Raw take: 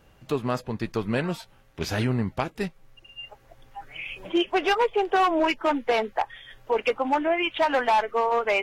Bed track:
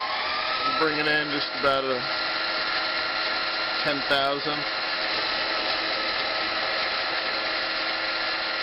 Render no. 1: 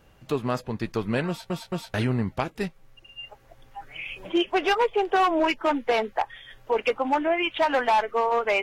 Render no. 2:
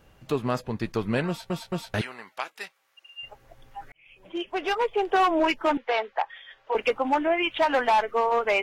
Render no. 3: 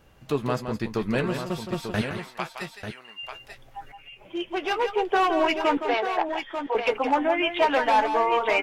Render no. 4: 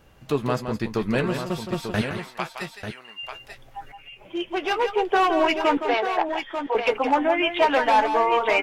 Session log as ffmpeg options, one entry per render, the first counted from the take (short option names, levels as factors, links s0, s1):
-filter_complex "[0:a]asplit=4[s0][s1][s2][s3];[s0]atrim=end=1.502[s4];[s1]atrim=start=1.278:end=1.502[s5];[s2]atrim=start=1.278:end=1.502[s6];[s3]atrim=start=1.938[s7];[s4][s5]acrossfade=d=0.004:c1=hsin:c2=hsin[s8];[s8][s6]acrossfade=d=0.004:c1=hsin:c2=hsin[s9];[s9][s7]acrossfade=d=0.004:c1=hsin:c2=hsin"
-filter_complex "[0:a]asettb=1/sr,asplit=3[s0][s1][s2];[s0]atrim=end=2.014[s3];[s1]atrim=start=2.01:end=3.23,asetpts=PTS-STARTPTS,afade=t=in:d=0.004:c=qsin,afade=t=out:st=1.216:d=0.004:c=qsin,highpass=990[s4];[s2]atrim=start=3.226[s5];[s3][s4]acrossfade=d=0.004:c1=hsin:c2=qsin[s6];[s6][s5]acrossfade=d=0.004:c1=qsin:c2=hsin,asettb=1/sr,asplit=3[s7][s8][s9];[s7]atrim=end=5.774[s10];[s8]atrim=start=5.77:end=6.75,asetpts=PTS-STARTPTS,afade=t=in:d=0.004:c=qsin,afade=t=out:st=0.976:d=0.004:c=qsin,acrossover=split=460 5100:gain=0.0891 1 0.0794[s11][s12][s13];[s11][s12][s13]amix=inputs=3:normalize=0[s14];[s9]atrim=start=6.746[s15];[s10][s14]acrossfade=d=0.004:c1=hsin:c2=qsin[s16];[s16][s15]acrossfade=d=0.004:c1=qsin:c2=hsin,asplit=2[s17][s18];[s17]atrim=end=3.92,asetpts=PTS-STARTPTS,afade=t=out:st=3.916:d=0.004:c=hsin[s19];[s18]atrim=start=3.92,asetpts=PTS-STARTPTS,afade=t=in:d=1.26[s20];[s19][s20]concat=n=2:v=0:a=1"
-filter_complex "[0:a]asplit=2[s0][s1];[s1]adelay=14,volume=0.251[s2];[s0][s2]amix=inputs=2:normalize=0,asplit=2[s3][s4];[s4]aecho=0:1:167|892:0.376|0.398[s5];[s3][s5]amix=inputs=2:normalize=0"
-af "volume=1.26"